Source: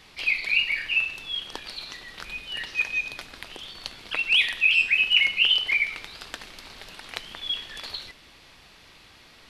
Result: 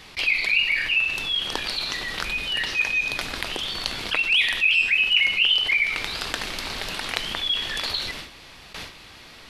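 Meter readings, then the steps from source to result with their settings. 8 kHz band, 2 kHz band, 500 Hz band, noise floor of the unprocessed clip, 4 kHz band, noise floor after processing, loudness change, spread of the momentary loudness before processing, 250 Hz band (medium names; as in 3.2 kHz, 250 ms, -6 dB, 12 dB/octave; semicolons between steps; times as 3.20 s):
+9.0 dB, +2.5 dB, +9.0 dB, -53 dBFS, +3.0 dB, -46 dBFS, +0.5 dB, 20 LU, no reading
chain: gate with hold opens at -39 dBFS; level flattener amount 50%; trim -1 dB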